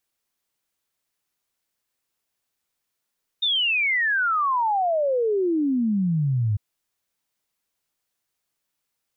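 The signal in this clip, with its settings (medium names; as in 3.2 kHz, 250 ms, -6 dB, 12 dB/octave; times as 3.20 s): log sweep 3.7 kHz -> 100 Hz 3.15 s -19 dBFS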